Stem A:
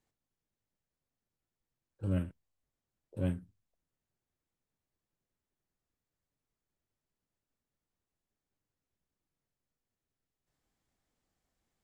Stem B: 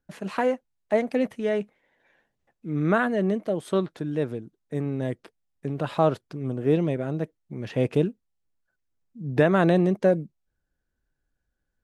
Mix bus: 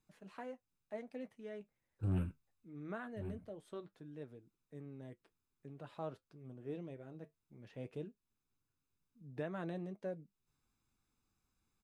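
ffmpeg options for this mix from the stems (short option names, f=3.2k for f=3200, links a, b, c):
-filter_complex "[0:a]aecho=1:1:0.8:0.68,asoftclip=type=tanh:threshold=-28.5dB,volume=2dB[a];[1:a]volume=-18.5dB,asplit=2[b][c];[c]apad=whole_len=521900[d];[a][d]sidechaincompress=threshold=-52dB:ratio=3:attack=16:release=213[e];[e][b]amix=inputs=2:normalize=0,flanger=delay=6.3:depth=3.9:regen=-63:speed=0.21:shape=triangular"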